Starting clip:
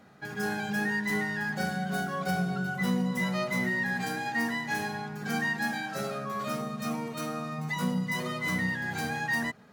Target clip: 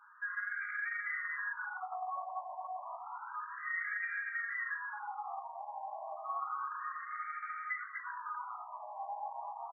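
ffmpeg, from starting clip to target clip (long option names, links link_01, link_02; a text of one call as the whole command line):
ffmpeg -i in.wav -filter_complex "[0:a]aecho=1:1:244|488|732|976:0.668|0.221|0.0728|0.024,asettb=1/sr,asplit=3[link_01][link_02][link_03];[link_01]atrim=end=5.504[link_04];[link_02]atrim=start=5.5:end=6.3,asetpts=PTS-STARTPTS,afade=type=in:duration=0.004:curve=qsin,afade=type=out:start_time=0.796:duration=0.004:curve=qsin,aeval=exprs='(tanh(17.8*val(0)+0.75)-tanh(0.75))/17.8':channel_layout=same[link_05];[link_03]atrim=start=6.296[link_06];[link_04][link_05]acrossfade=duration=0.004:curve1=hsin:curve2=qsin[link_07];[link_07][link_06]acrossfade=duration=0.004:curve1=qsin:curve2=hsin,flanger=delay=9:depth=9.6:regen=-45:speed=0.74:shape=triangular,acompressor=threshold=-34dB:ratio=5,lowshelf=frequency=250:gain=4,aeval=exprs='0.0266*(abs(mod(val(0)/0.0266+3,4)-2)-1)':channel_layout=same,acrossover=split=580|1300[link_08][link_09][link_10];[link_08]acompressor=threshold=-49dB:ratio=4[link_11];[link_09]acompressor=threshold=-47dB:ratio=4[link_12];[link_10]acompressor=threshold=-45dB:ratio=4[link_13];[link_11][link_12][link_13]amix=inputs=3:normalize=0,afftfilt=real='re*between(b*sr/1024,790*pow(1700/790,0.5+0.5*sin(2*PI*0.3*pts/sr))/1.41,790*pow(1700/790,0.5+0.5*sin(2*PI*0.3*pts/sr))*1.41)':imag='im*between(b*sr/1024,790*pow(1700/790,0.5+0.5*sin(2*PI*0.3*pts/sr))/1.41,790*pow(1700/790,0.5+0.5*sin(2*PI*0.3*pts/sr))*1.41)':win_size=1024:overlap=0.75,volume=8dB" out.wav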